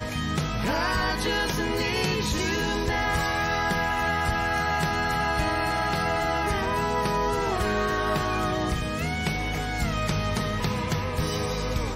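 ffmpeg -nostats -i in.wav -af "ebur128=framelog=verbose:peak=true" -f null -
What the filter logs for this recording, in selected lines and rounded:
Integrated loudness:
  I:         -25.9 LUFS
  Threshold: -35.9 LUFS
Loudness range:
  LRA:         2.1 LU
  Threshold: -45.7 LUFS
  LRA low:   -27.2 LUFS
  LRA high:  -25.1 LUFS
True peak:
  Peak:      -15.0 dBFS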